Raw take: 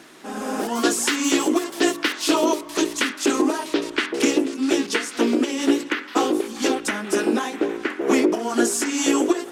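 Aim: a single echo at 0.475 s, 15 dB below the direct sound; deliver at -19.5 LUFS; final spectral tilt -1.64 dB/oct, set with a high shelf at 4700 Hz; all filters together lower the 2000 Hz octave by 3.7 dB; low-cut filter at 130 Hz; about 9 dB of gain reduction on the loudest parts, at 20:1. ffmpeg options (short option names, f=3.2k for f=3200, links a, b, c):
-af "highpass=130,equalizer=f=2k:t=o:g=-6,highshelf=f=4.7k:g=6.5,acompressor=threshold=-23dB:ratio=20,aecho=1:1:475:0.178,volume=8dB"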